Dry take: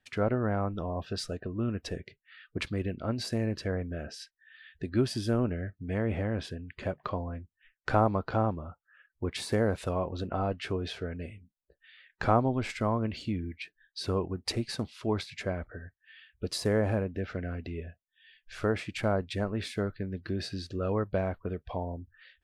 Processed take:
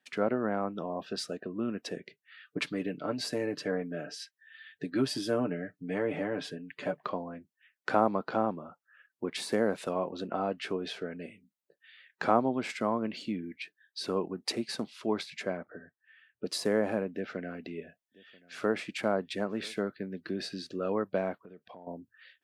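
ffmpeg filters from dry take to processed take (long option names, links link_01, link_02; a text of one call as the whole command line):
ffmpeg -i in.wav -filter_complex "[0:a]asettb=1/sr,asplit=3[link_01][link_02][link_03];[link_01]atrim=end=2.464[link_04];[link_02]atrim=start=2.46:end=6.99,asetpts=PTS-STARTPTS,afade=type=in:duration=0.004:curve=qsin,afade=type=out:start_time=4.526:duration=0.004:curve=qsin,aecho=1:1:6.8:0.65,atrim=end_sample=199773[link_05];[link_03]atrim=start=6.986[link_06];[link_04][link_05]acrossfade=duration=0.004:curve1=hsin:curve2=qsin[link_07];[link_07][link_06]acrossfade=duration=0.004:curve1=qsin:curve2=hsin,asettb=1/sr,asplit=3[link_08][link_09][link_10];[link_08]atrim=end=15.574[link_11];[link_09]atrim=start=15.57:end=16.46,asetpts=PTS-STARTPTS,afade=type=in:duration=0.004:curve=qsin,afade=type=out:start_time=0.886:duration=0.004:curve=qsin,lowpass=1600[link_12];[link_10]atrim=start=16.456[link_13];[link_11][link_12]acrossfade=duration=0.004:curve1=hsin:curve2=qsin[link_14];[link_14][link_13]acrossfade=duration=0.004:curve1=qsin:curve2=hsin,asettb=1/sr,asplit=3[link_15][link_16][link_17];[link_15]atrim=end=17.134[link_18];[link_16]atrim=start=17.13:end=19.79,asetpts=PTS-STARTPTS,afade=type=in:duration=0.004:curve=qsin,afade=type=out:start_time=2.656:duration=0.004:curve=qsin,aecho=1:1:985:0.0668,atrim=end_sample=117306[link_19];[link_17]atrim=start=19.786[link_20];[link_18][link_19]acrossfade=duration=0.004:curve1=hsin:curve2=qsin[link_21];[link_21][link_20]acrossfade=duration=0.004:curve1=qsin:curve2=hsin,asettb=1/sr,asplit=3[link_22][link_23][link_24];[link_22]atrim=end=21.444[link_25];[link_23]atrim=start=21.44:end=21.87,asetpts=PTS-STARTPTS,afade=type=in:duration=0.004:curve=qsin,afade=type=out:start_time=0.426:duration=0.004:curve=qsin,acompressor=threshold=-45dB:ratio=6:attack=3.2:release=140:knee=1:detection=peak[link_26];[link_24]atrim=start=21.866[link_27];[link_25][link_26]acrossfade=duration=0.004:curve1=hsin:curve2=qsin[link_28];[link_28][link_27]acrossfade=duration=0.004:curve1=qsin:curve2=hsin,highpass=frequency=180:width=0.5412,highpass=frequency=180:width=1.3066" out.wav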